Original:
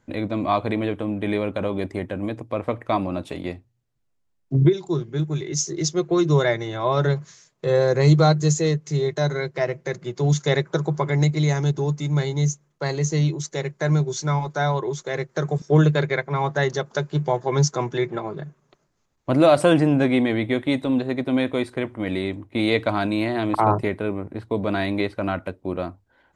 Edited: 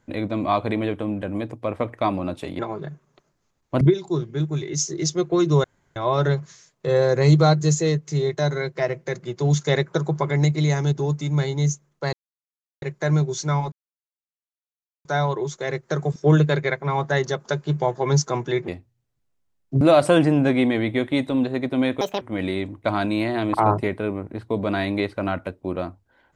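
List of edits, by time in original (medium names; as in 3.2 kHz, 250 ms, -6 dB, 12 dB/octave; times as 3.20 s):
1.22–2.10 s: delete
3.47–4.60 s: swap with 18.14–19.36 s
6.43–6.75 s: room tone
12.92–13.61 s: mute
14.51 s: insert silence 1.33 s
21.56–21.89 s: speed 162%
22.52–22.85 s: delete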